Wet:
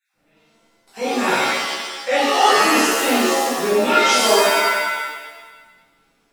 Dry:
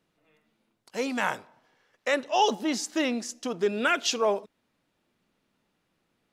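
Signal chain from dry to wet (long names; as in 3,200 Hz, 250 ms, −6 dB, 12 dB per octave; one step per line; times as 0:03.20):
time-frequency cells dropped at random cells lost 20%
reverb with rising layers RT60 1.3 s, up +7 semitones, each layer −2 dB, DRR −12 dB
level −3.5 dB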